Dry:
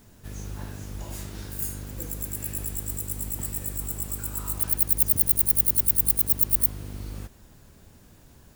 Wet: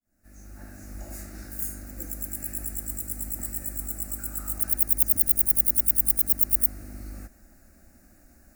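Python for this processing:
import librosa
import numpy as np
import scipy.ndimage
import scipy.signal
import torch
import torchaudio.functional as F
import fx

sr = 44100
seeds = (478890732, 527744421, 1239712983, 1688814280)

y = fx.fade_in_head(x, sr, length_s=0.95)
y = fx.fixed_phaser(y, sr, hz=660.0, stages=8)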